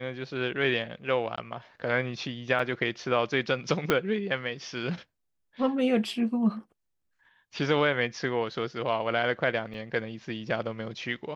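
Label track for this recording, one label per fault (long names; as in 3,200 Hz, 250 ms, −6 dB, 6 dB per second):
1.360000	1.380000	drop-out 15 ms
2.590000	2.590000	drop-out 4.5 ms
3.900000	3.900000	click −9 dBFS
9.740000	9.740000	drop-out 2.9 ms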